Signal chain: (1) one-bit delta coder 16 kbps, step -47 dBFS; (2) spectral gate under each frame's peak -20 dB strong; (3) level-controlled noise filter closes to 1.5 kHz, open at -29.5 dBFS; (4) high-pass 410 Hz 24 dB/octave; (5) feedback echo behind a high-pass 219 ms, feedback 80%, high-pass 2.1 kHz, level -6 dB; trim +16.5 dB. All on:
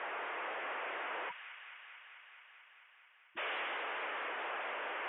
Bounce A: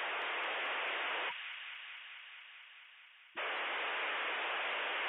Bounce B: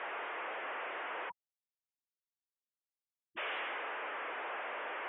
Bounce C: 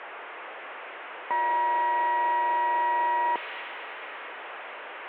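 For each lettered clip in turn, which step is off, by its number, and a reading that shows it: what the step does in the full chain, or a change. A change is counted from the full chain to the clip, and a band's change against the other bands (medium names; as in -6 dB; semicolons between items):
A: 3, 2 kHz band +3.0 dB; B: 5, momentary loudness spread change -13 LU; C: 2, 1 kHz band +10.0 dB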